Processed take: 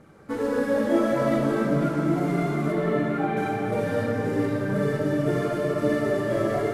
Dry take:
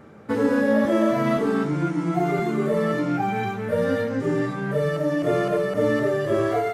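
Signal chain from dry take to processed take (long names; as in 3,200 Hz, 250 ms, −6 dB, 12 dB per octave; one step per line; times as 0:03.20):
variable-slope delta modulation 64 kbit/s
0:02.72–0:03.37: elliptic low-pass filter 3,900 Hz
phase shifter 1.7 Hz, delay 3.8 ms, feedback 40%
feedback delay with all-pass diffusion 497 ms, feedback 48%, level −9 dB
rectangular room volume 170 cubic metres, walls hard, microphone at 0.57 metres
level −7.5 dB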